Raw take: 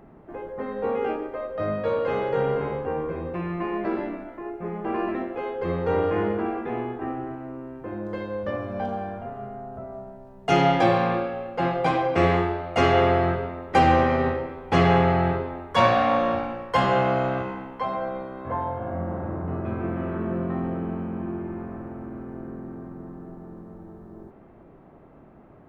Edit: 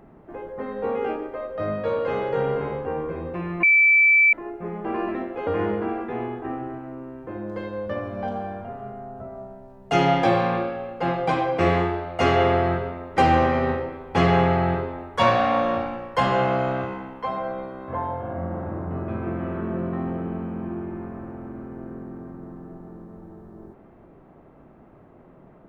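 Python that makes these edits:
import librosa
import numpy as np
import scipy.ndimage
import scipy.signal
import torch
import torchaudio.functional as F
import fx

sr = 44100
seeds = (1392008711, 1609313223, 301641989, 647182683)

y = fx.edit(x, sr, fx.bleep(start_s=3.63, length_s=0.7, hz=2320.0, db=-12.5),
    fx.cut(start_s=5.47, length_s=0.57), tone=tone)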